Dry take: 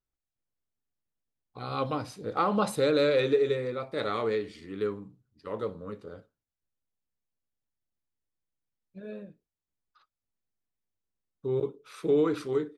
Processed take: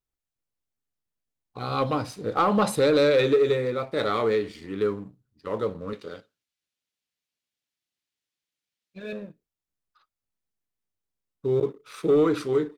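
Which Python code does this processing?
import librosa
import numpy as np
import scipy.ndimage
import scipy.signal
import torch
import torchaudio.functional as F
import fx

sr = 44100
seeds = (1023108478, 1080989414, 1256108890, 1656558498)

y = fx.weighting(x, sr, curve='D', at=(5.93, 9.13))
y = fx.leveller(y, sr, passes=1)
y = y * 10.0 ** (2.0 / 20.0)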